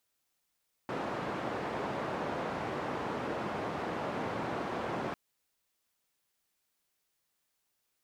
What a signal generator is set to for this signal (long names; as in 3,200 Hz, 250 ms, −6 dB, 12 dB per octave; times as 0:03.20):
band-limited noise 130–900 Hz, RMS −36 dBFS 4.25 s